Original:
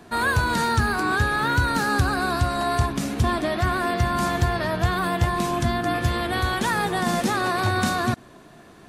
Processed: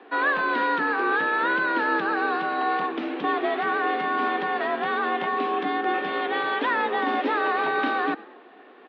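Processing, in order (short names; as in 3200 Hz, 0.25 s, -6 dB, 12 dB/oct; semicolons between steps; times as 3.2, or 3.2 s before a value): frequency-shifting echo 98 ms, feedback 44%, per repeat +42 Hz, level -20.5 dB; mistuned SSB +53 Hz 230–3300 Hz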